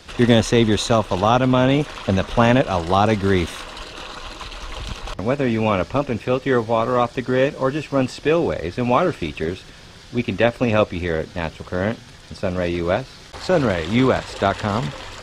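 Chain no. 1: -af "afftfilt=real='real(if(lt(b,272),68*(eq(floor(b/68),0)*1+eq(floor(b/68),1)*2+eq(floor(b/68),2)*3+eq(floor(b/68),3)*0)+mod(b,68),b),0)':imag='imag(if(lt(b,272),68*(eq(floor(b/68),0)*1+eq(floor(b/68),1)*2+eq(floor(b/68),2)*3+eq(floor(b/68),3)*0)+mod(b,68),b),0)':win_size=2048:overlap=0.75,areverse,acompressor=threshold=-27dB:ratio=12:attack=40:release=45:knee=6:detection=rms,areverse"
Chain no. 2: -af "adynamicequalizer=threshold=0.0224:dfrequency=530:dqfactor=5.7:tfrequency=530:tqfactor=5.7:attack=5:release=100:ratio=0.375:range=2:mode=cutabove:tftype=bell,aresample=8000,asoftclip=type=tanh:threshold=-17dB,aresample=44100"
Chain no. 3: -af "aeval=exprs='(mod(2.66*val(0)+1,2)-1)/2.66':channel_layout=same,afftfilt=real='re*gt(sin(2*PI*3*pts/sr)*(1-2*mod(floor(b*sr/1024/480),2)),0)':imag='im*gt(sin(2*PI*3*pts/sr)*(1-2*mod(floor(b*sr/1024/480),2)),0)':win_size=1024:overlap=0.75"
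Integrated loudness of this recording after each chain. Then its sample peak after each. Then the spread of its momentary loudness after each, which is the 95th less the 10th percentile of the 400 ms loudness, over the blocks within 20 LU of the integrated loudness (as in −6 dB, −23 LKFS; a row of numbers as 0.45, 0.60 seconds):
−25.5, −25.0, −23.5 LKFS; −12.0, −14.0, −5.5 dBFS; 7, 11, 15 LU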